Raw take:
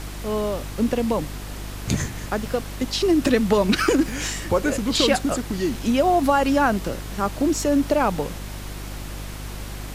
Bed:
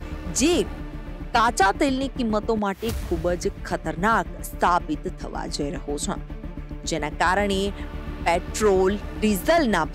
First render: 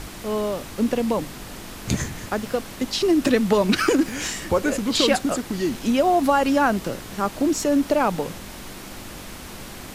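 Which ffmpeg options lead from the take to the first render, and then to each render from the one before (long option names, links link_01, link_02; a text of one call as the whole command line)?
ffmpeg -i in.wav -af "bandreject=frequency=50:width_type=h:width=4,bandreject=frequency=100:width_type=h:width=4,bandreject=frequency=150:width_type=h:width=4" out.wav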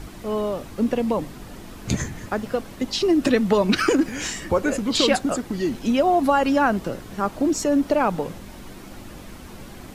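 ffmpeg -i in.wav -af "afftdn=noise_reduction=8:noise_floor=-38" out.wav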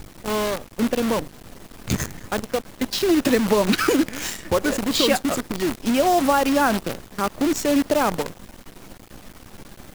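ffmpeg -i in.wav -af "acrusher=bits=5:dc=4:mix=0:aa=0.000001" out.wav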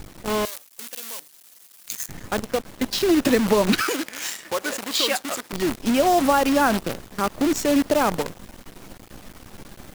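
ffmpeg -i in.wav -filter_complex "[0:a]asettb=1/sr,asplit=3[link_01][link_02][link_03];[link_01]atrim=end=0.454[link_04];[link_02]atrim=start=0.45:end=2.09,asetpts=PTS-STARTPTS,afade=type=in:duration=0.004:curve=qsin,afade=type=out:start_time=1.636:duration=0.004:curve=qsin,aderivative[link_05];[link_03]atrim=start=2.086[link_06];[link_04][link_05]acrossfade=duration=0.004:curve1=hsin:curve2=qsin[link_07];[link_07][link_06]acrossfade=duration=0.004:curve1=qsin:curve2=hsin,asettb=1/sr,asplit=3[link_08][link_09][link_10];[link_08]atrim=end=3.814[link_11];[link_09]atrim=start=3.81:end=5.53,asetpts=PTS-STARTPTS,afade=type=in:duration=0.004:curve=qsin,afade=type=out:start_time=1.716:duration=0.004:curve=qsin,highpass=frequency=940:poles=1[link_12];[link_10]atrim=start=5.526[link_13];[link_11][link_12]acrossfade=duration=0.004:curve1=hsin:curve2=qsin[link_14];[link_14][link_13]acrossfade=duration=0.004:curve1=qsin:curve2=hsin" out.wav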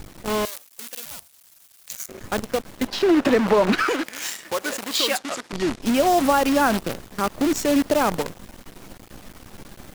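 ffmpeg -i in.wav -filter_complex "[0:a]asettb=1/sr,asplit=3[link_01][link_02][link_03];[link_01]atrim=end=1.054[link_04];[link_02]atrim=start=1.05:end=2.21,asetpts=PTS-STARTPTS,afade=type=in:duration=0.004:curve=qsin,afade=type=out:start_time=1.156:duration=0.004:curve=qsin,aeval=exprs='val(0)*sin(2*PI*380*n/s)':channel_layout=same[link_05];[link_03]atrim=start=2.206[link_06];[link_04][link_05]acrossfade=duration=0.004:curve1=hsin:curve2=qsin[link_07];[link_07][link_06]acrossfade=duration=0.004:curve1=qsin:curve2=hsin,asettb=1/sr,asplit=3[link_08][link_09][link_10];[link_08]atrim=end=2.874[link_11];[link_09]atrim=start=2.87:end=4.04,asetpts=PTS-STARTPTS,afade=type=in:duration=0.004:curve=qsin,afade=type=out:start_time=1.166:duration=0.004:curve=qsin,asplit=2[link_12][link_13];[link_13]highpass=frequency=720:poles=1,volume=15dB,asoftclip=type=tanh:threshold=-6.5dB[link_14];[link_12][link_14]amix=inputs=2:normalize=0,lowpass=frequency=1200:poles=1,volume=-6dB[link_15];[link_10]atrim=start=4.036[link_16];[link_11][link_15]acrossfade=duration=0.004:curve1=hsin:curve2=qsin[link_17];[link_17][link_16]acrossfade=duration=0.004:curve1=qsin:curve2=hsin,asettb=1/sr,asplit=3[link_18][link_19][link_20];[link_18]atrim=end=5.184[link_21];[link_19]atrim=start=5.18:end=5.82,asetpts=PTS-STARTPTS,afade=type=in:duration=0.004:curve=qsin,afade=type=out:start_time=0.636:duration=0.004:curve=qsin,lowpass=7400[link_22];[link_20]atrim=start=5.816[link_23];[link_21][link_22]acrossfade=duration=0.004:curve1=hsin:curve2=qsin[link_24];[link_24][link_23]acrossfade=duration=0.004:curve1=qsin:curve2=hsin" out.wav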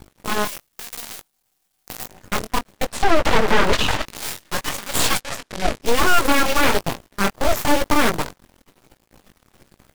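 ffmpeg -i in.wav -af "flanger=delay=17:depth=6.3:speed=1,aeval=exprs='0.398*(cos(1*acos(clip(val(0)/0.398,-1,1)))-cos(1*PI/2))+0.0891*(cos(3*acos(clip(val(0)/0.398,-1,1)))-cos(3*PI/2))+0.141*(cos(4*acos(clip(val(0)/0.398,-1,1)))-cos(4*PI/2))+0.00891*(cos(7*acos(clip(val(0)/0.398,-1,1)))-cos(7*PI/2))+0.126*(cos(8*acos(clip(val(0)/0.398,-1,1)))-cos(8*PI/2))':channel_layout=same" out.wav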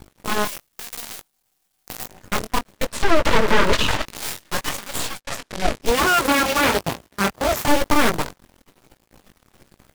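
ffmpeg -i in.wav -filter_complex "[0:a]asettb=1/sr,asplit=3[link_01][link_02][link_03];[link_01]atrim=end=2.754[link_04];[link_02]atrim=start=2.75:end=3.91,asetpts=PTS-STARTPTS,afade=type=in:duration=0.004:curve=qsin,afade=type=out:start_time=1.156:duration=0.004:curve=qsin,asuperstop=centerf=760:order=4:qfactor=6.7[link_05];[link_03]atrim=start=3.906[link_06];[link_04][link_05]acrossfade=duration=0.004:curve1=hsin:curve2=qsin[link_07];[link_07][link_06]acrossfade=duration=0.004:curve1=qsin:curve2=hsin,asettb=1/sr,asplit=3[link_08][link_09][link_10];[link_08]atrim=end=5.904[link_11];[link_09]atrim=start=5.9:end=7.68,asetpts=PTS-STARTPTS,afade=type=in:duration=0.004:curve=qsin,afade=type=out:start_time=1.776:duration=0.004:curve=qsin,highpass=53[link_12];[link_10]atrim=start=7.676[link_13];[link_11][link_12]acrossfade=duration=0.004:curve1=hsin:curve2=qsin[link_14];[link_14][link_13]acrossfade=duration=0.004:curve1=qsin:curve2=hsin,asplit=2[link_15][link_16];[link_15]atrim=end=5.27,asetpts=PTS-STARTPTS,afade=type=out:start_time=4.7:duration=0.57[link_17];[link_16]atrim=start=5.27,asetpts=PTS-STARTPTS,afade=type=in:duration=0.004:curve=hsin[link_18];[link_17][link_18]concat=n=2:v=0:a=1" out.wav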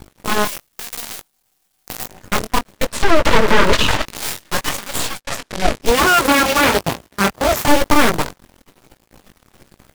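ffmpeg -i in.wav -af "volume=4.5dB,alimiter=limit=-1dB:level=0:latency=1" out.wav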